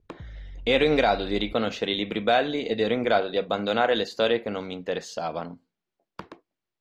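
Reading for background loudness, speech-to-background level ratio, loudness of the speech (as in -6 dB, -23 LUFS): -45.0 LUFS, 20.0 dB, -25.0 LUFS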